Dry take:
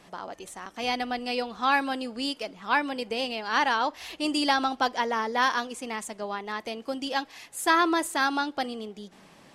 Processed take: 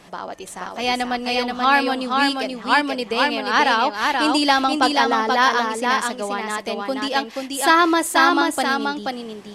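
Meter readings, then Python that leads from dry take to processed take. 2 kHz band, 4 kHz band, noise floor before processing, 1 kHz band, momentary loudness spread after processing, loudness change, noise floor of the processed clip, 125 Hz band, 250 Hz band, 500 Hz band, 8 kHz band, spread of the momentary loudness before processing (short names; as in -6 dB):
+8.5 dB, +8.5 dB, -55 dBFS, +8.5 dB, 10 LU, +8.5 dB, -38 dBFS, n/a, +8.5 dB, +8.5 dB, +8.5 dB, 14 LU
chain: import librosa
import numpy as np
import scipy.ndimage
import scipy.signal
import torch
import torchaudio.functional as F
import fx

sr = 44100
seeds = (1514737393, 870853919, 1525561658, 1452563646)

y = x + 10.0 ** (-3.5 / 20.0) * np.pad(x, (int(481 * sr / 1000.0), 0))[:len(x)]
y = y * librosa.db_to_amplitude(7.0)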